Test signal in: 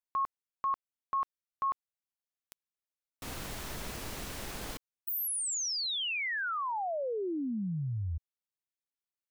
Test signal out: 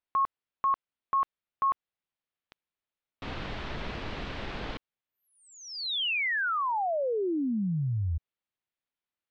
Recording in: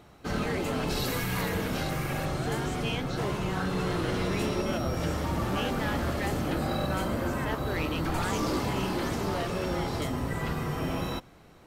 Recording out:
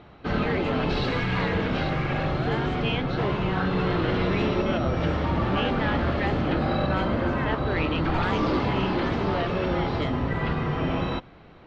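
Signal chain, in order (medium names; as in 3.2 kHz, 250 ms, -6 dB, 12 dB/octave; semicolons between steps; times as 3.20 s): low-pass 3.8 kHz 24 dB/octave; trim +5 dB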